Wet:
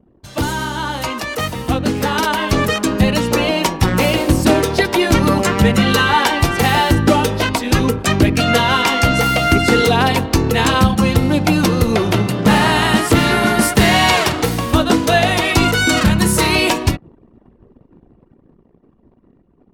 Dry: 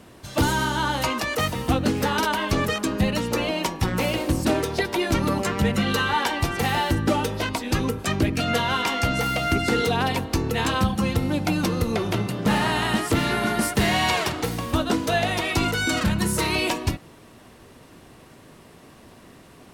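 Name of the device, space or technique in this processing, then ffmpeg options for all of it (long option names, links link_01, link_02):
voice memo with heavy noise removal: -af "anlmdn=0.158,dynaudnorm=framelen=350:gausssize=13:maxgain=9dB,volume=1.5dB"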